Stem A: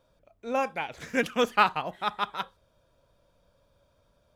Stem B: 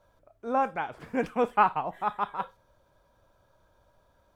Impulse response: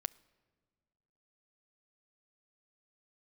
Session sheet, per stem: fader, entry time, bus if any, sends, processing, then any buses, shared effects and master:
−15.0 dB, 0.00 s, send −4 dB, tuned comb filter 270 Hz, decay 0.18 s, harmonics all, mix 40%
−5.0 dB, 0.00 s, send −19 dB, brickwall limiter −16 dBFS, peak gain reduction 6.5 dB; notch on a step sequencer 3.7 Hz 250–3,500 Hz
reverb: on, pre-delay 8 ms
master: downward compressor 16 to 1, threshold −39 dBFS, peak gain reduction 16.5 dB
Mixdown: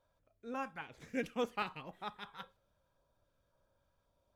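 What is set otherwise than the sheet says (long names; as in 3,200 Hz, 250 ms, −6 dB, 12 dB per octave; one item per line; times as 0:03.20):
stem B −5.0 dB → −14.5 dB
master: missing downward compressor 16 to 1, threshold −39 dBFS, peak gain reduction 16.5 dB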